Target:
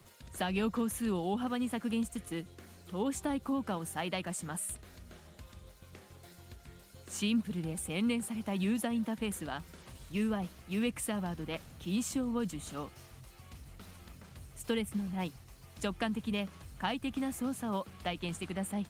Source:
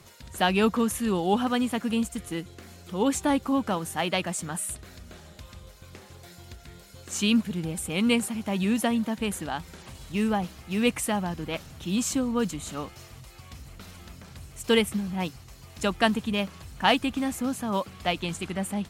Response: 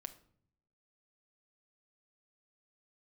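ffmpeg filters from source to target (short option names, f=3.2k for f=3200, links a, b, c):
-filter_complex "[0:a]asettb=1/sr,asplit=3[a][b][c];[a]atrim=end=9.294[d];[b]atrim=start=9.29:end=11.3,asetpts=PTS-STARTPTS,afade=t=in:d=0.004:c=qsin,afade=t=out:st=2.006:d=0.004:c=qsin,bandreject=f=820:w=12[e];[c]atrim=start=11.296[f];[d][e]acrossfade=d=0.004:c1=hsin:c2=qsin[g];[g][f]acrossfade=d=0.004:c1=qsin:c2=hsin,acrossover=split=210[h][i];[i]acompressor=threshold=-26dB:ratio=6[j];[h][j]amix=inputs=2:normalize=0,volume=-5.5dB" -ar 48000 -c:a libopus -b:a 32k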